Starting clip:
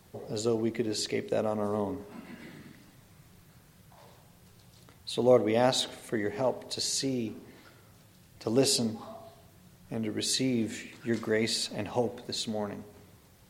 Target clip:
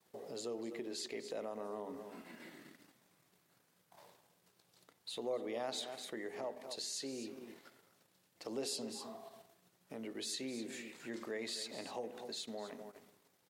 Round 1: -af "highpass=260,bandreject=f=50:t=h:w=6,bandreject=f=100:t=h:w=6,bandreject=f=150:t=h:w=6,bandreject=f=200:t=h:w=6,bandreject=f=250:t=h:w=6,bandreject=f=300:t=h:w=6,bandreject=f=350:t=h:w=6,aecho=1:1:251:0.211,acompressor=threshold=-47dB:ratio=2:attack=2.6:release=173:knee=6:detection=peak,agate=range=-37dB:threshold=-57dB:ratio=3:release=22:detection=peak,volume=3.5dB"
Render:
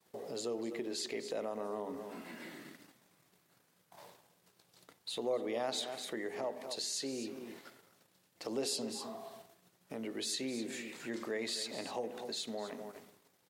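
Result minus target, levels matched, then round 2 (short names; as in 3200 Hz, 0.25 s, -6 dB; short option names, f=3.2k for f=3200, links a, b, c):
compressor: peak gain reduction -4 dB
-af "highpass=260,bandreject=f=50:t=h:w=6,bandreject=f=100:t=h:w=6,bandreject=f=150:t=h:w=6,bandreject=f=200:t=h:w=6,bandreject=f=250:t=h:w=6,bandreject=f=300:t=h:w=6,bandreject=f=350:t=h:w=6,aecho=1:1:251:0.211,acompressor=threshold=-55dB:ratio=2:attack=2.6:release=173:knee=6:detection=peak,agate=range=-37dB:threshold=-57dB:ratio=3:release=22:detection=peak,volume=3.5dB"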